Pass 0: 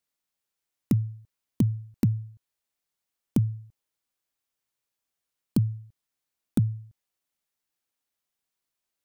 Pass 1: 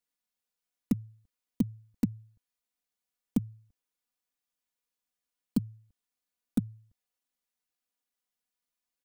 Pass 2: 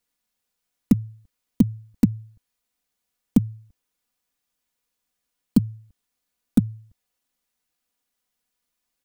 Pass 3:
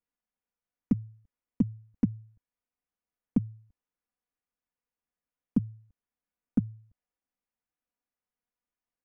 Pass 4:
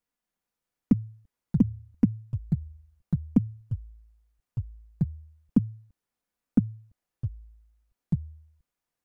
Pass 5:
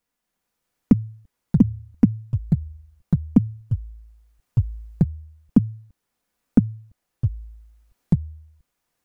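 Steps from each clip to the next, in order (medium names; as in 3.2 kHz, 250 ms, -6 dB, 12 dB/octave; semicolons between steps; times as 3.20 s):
comb 4.1 ms, depth 80%; trim -6.5 dB
bass shelf 200 Hz +4.5 dB; trim +8.5 dB
boxcar filter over 11 samples; trim -8.5 dB
ever faster or slower copies 254 ms, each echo -6 st, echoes 2, each echo -6 dB; trim +4.5 dB
recorder AGC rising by 5.2 dB/s; trim +6 dB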